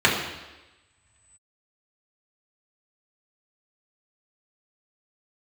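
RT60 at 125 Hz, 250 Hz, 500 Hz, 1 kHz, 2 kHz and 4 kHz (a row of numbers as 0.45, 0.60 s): 2.4, 1.1, 1.1, 1.1, 1.1, 1.1 s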